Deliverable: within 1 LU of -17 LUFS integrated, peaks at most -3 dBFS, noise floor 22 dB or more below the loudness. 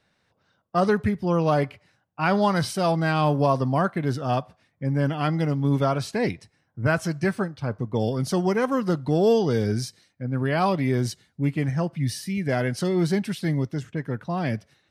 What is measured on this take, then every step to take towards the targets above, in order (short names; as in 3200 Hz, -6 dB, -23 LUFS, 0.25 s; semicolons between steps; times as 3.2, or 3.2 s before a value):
loudness -24.5 LUFS; peak -9.0 dBFS; loudness target -17.0 LUFS
-> gain +7.5 dB; limiter -3 dBFS